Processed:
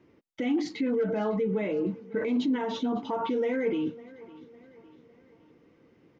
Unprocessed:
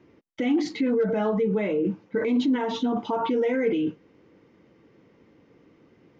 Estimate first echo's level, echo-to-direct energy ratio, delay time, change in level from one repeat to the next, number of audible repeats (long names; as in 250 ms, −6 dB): −20.0 dB, −19.0 dB, 555 ms, −6.5 dB, 3